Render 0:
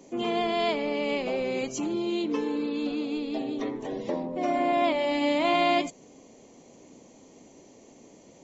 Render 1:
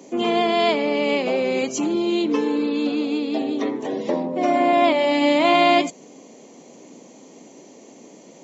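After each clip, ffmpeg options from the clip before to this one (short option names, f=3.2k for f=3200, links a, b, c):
-af "highpass=f=160:w=0.5412,highpass=f=160:w=1.3066,volume=7.5dB"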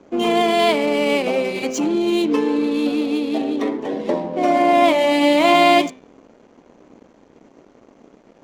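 -af "bandreject=f=129:t=h:w=4,bandreject=f=258:t=h:w=4,bandreject=f=387:t=h:w=4,bandreject=f=516:t=h:w=4,bandreject=f=645:t=h:w=4,bandreject=f=774:t=h:w=4,bandreject=f=903:t=h:w=4,bandreject=f=1.032k:t=h:w=4,bandreject=f=1.161k:t=h:w=4,bandreject=f=1.29k:t=h:w=4,bandreject=f=1.419k:t=h:w=4,bandreject=f=1.548k:t=h:w=4,bandreject=f=1.677k:t=h:w=4,bandreject=f=1.806k:t=h:w=4,bandreject=f=1.935k:t=h:w=4,bandreject=f=2.064k:t=h:w=4,bandreject=f=2.193k:t=h:w=4,bandreject=f=2.322k:t=h:w=4,bandreject=f=2.451k:t=h:w=4,bandreject=f=2.58k:t=h:w=4,bandreject=f=2.709k:t=h:w=4,bandreject=f=2.838k:t=h:w=4,bandreject=f=2.967k:t=h:w=4,bandreject=f=3.096k:t=h:w=4,bandreject=f=3.225k:t=h:w=4,bandreject=f=3.354k:t=h:w=4,bandreject=f=3.483k:t=h:w=4,bandreject=f=3.612k:t=h:w=4,bandreject=f=3.741k:t=h:w=4,bandreject=f=3.87k:t=h:w=4,aeval=exprs='sgn(val(0))*max(abs(val(0))-0.00398,0)':c=same,adynamicsmooth=sensitivity=8:basefreq=2.3k,volume=3dB"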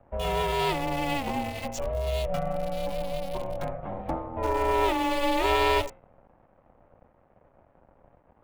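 -filter_complex "[0:a]aeval=exprs='val(0)*sin(2*PI*280*n/s)':c=same,acrossover=split=380|1400|2300[a][b][c][d];[d]acrusher=bits=5:mix=0:aa=0.000001[e];[a][b][c][e]amix=inputs=4:normalize=0,volume=-7dB"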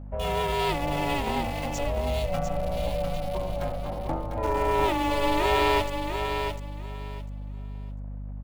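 -filter_complex "[0:a]aeval=exprs='val(0)+0.0126*(sin(2*PI*50*n/s)+sin(2*PI*2*50*n/s)/2+sin(2*PI*3*50*n/s)/3+sin(2*PI*4*50*n/s)/4+sin(2*PI*5*50*n/s)/5)':c=same,asplit=2[a][b];[b]aecho=0:1:699|1398|2097:0.473|0.0994|0.0209[c];[a][c]amix=inputs=2:normalize=0"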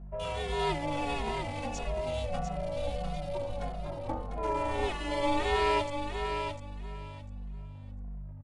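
-filter_complex "[0:a]aresample=22050,aresample=44100,asplit=2[a][b];[b]adelay=2.4,afreqshift=-1.6[c];[a][c]amix=inputs=2:normalize=1,volume=-2.5dB"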